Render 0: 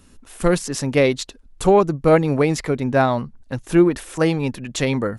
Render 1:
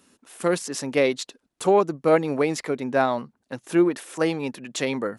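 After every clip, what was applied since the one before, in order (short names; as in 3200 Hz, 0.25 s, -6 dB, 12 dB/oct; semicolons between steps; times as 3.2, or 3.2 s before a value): HPF 240 Hz 12 dB/oct; gain -3.5 dB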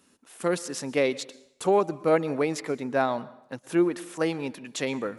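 plate-style reverb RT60 0.76 s, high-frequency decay 0.85×, pre-delay 0.105 s, DRR 19 dB; gain -3.5 dB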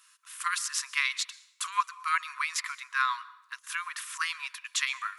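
brick-wall FIR high-pass 970 Hz; gain +5 dB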